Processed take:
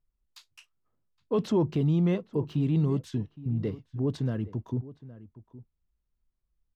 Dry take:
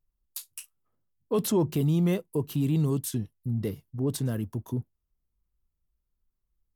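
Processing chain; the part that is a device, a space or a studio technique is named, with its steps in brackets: shout across a valley (air absorption 180 m; outdoor echo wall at 140 m, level -17 dB)

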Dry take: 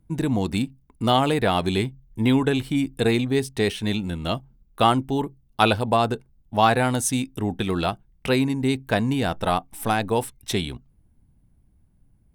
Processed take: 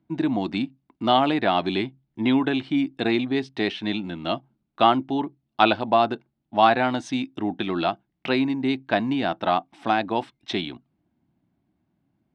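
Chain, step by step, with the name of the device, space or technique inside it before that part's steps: kitchen radio (speaker cabinet 220–4400 Hz, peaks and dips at 320 Hz +6 dB, 460 Hz -10 dB, 690 Hz +4 dB)

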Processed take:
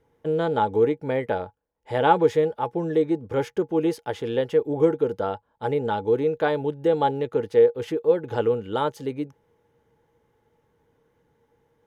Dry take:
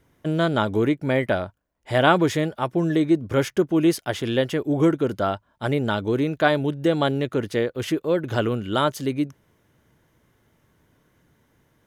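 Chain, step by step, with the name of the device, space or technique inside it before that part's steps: inside a helmet (high shelf 5200 Hz -7 dB; small resonant body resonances 470/840 Hz, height 18 dB, ringing for 90 ms); gain -7 dB

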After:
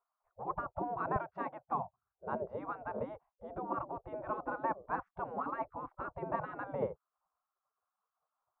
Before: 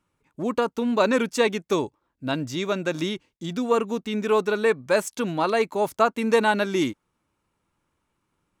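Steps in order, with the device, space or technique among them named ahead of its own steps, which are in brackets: 1.16–2.26 HPF 270 Hz 12 dB/oct; under water (LPF 680 Hz 24 dB/oct; bell 290 Hz +11 dB 0.54 oct); spectral gate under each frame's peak -30 dB weak; gain +13.5 dB

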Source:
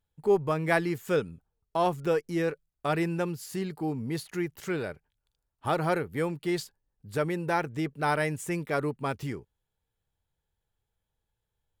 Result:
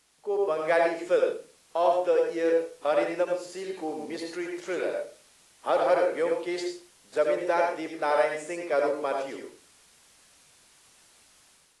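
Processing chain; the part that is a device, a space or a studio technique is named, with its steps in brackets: HPF 280 Hz 12 dB/oct; filmed off a television (BPF 290–7900 Hz; bell 560 Hz +10 dB 0.47 oct; reverb RT60 0.35 s, pre-delay 74 ms, DRR 2 dB; white noise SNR 29 dB; AGC gain up to 8 dB; gain -8.5 dB; AAC 48 kbps 24000 Hz)

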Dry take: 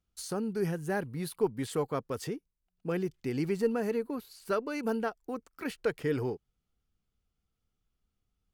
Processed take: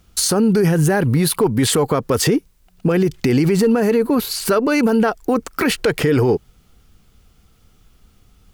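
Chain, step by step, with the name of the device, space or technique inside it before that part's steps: loud club master (compressor 2:1, threshold -32 dBFS, peak gain reduction 6 dB; hard clip -24 dBFS, distortion -35 dB; maximiser +36 dB); gain -7.5 dB

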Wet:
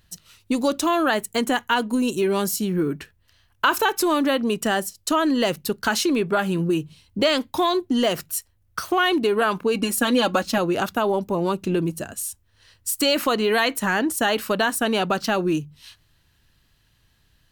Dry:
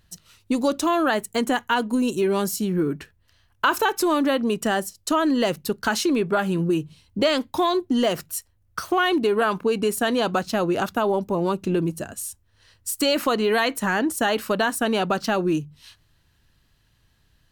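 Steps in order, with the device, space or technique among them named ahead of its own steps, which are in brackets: 9.74–10.58 comb 3.6 ms, depth 75%; presence and air boost (bell 2900 Hz +2.5 dB 1.7 oct; high shelf 10000 Hz +5 dB)

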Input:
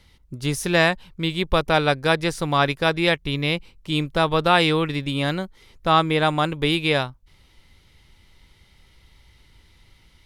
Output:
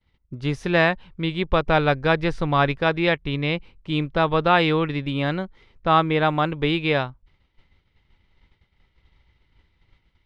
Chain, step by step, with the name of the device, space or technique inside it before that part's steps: hearing-loss simulation (LPF 2900 Hz 12 dB/oct; expander -46 dBFS); 1.67–2.78 low shelf 66 Hz +11.5 dB

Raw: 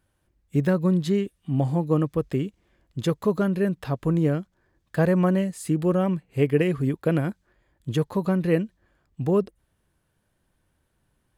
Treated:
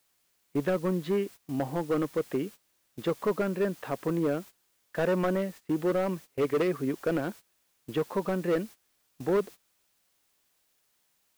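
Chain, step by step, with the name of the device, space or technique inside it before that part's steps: aircraft radio (BPF 300–2400 Hz; hard clip -21.5 dBFS, distortion -11 dB; white noise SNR 23 dB; gate -42 dBFS, range -18 dB)

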